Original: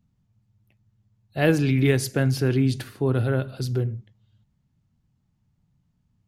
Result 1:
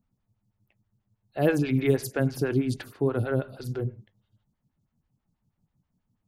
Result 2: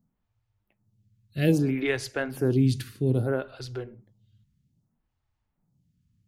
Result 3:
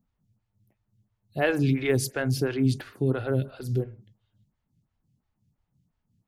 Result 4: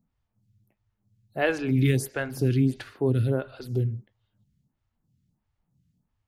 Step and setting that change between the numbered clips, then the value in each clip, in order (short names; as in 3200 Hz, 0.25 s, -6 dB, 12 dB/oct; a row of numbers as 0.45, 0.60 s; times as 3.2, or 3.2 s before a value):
photocell phaser, rate: 6.2, 0.62, 2.9, 1.5 Hz